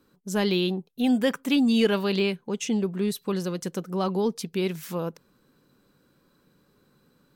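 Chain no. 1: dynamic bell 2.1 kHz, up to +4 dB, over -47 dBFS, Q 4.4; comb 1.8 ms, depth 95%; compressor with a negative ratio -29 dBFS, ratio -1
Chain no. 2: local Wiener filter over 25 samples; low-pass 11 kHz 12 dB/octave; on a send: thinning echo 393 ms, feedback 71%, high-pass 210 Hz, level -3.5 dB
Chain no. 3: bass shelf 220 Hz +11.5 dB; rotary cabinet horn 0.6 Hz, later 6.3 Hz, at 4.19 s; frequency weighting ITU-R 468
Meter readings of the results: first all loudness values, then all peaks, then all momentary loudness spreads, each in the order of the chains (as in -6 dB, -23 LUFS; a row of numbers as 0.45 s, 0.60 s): -29.5 LUFS, -25.5 LUFS, -28.0 LUFS; -13.0 dBFS, -11.0 dBFS, -7.5 dBFS; 3 LU, 17 LU, 12 LU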